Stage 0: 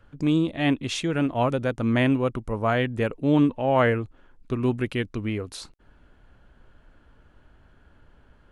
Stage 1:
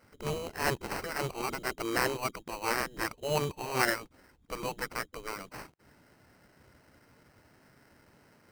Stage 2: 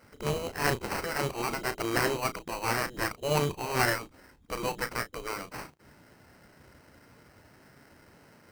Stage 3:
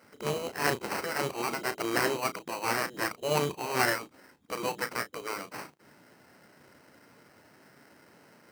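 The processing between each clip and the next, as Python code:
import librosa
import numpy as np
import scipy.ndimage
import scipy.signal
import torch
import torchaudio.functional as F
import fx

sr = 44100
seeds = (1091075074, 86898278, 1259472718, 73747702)

y1 = fx.spec_gate(x, sr, threshold_db=-10, keep='weak')
y1 = fx.sample_hold(y1, sr, seeds[0], rate_hz=3500.0, jitter_pct=0)
y2 = fx.diode_clip(y1, sr, knee_db=-30.0)
y2 = fx.doubler(y2, sr, ms=34.0, db=-11)
y2 = y2 * librosa.db_to_amplitude(4.5)
y3 = scipy.signal.sosfilt(scipy.signal.butter(2, 170.0, 'highpass', fs=sr, output='sos'), y2)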